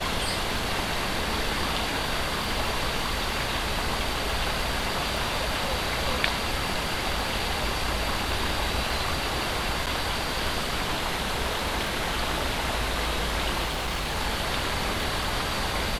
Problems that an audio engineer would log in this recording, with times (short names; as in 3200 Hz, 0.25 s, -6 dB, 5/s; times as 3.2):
crackle 18/s -31 dBFS
9.86–9.87 gap 7.5 ms
13.65–14.17 clipped -25 dBFS